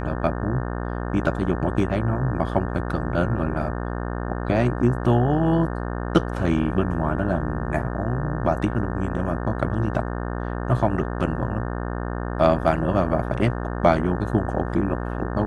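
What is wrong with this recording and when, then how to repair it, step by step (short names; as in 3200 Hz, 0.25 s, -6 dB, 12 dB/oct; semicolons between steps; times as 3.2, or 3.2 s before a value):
buzz 60 Hz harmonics 30 -28 dBFS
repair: de-hum 60 Hz, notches 30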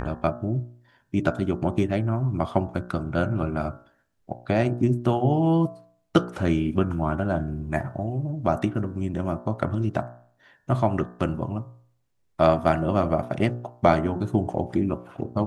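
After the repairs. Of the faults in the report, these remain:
none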